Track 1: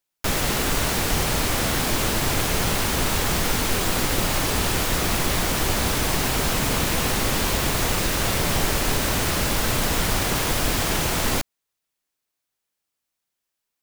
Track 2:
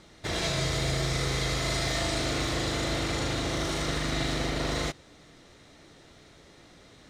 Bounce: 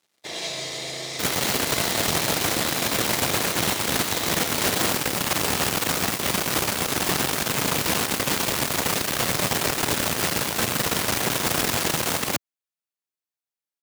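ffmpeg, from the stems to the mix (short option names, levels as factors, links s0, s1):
-filter_complex "[0:a]aeval=exprs='0.398*(cos(1*acos(clip(val(0)/0.398,-1,1)))-cos(1*PI/2))+0.0562*(cos(4*acos(clip(val(0)/0.398,-1,1)))-cos(4*PI/2))+0.126*(cos(5*acos(clip(val(0)/0.398,-1,1)))-cos(5*PI/2))+0.126*(cos(7*acos(clip(val(0)/0.398,-1,1)))-cos(7*PI/2))+0.0631*(cos(8*acos(clip(val(0)/0.398,-1,1)))-cos(8*PI/2))':c=same,adelay=950,volume=0.631[s0];[1:a]highpass=f=670:p=1,equalizer=f=1400:t=o:w=0.53:g=-12,aeval=exprs='sgn(val(0))*max(abs(val(0))-0.00188,0)':c=same,volume=1.33[s1];[s0][s1]amix=inputs=2:normalize=0,highpass=120"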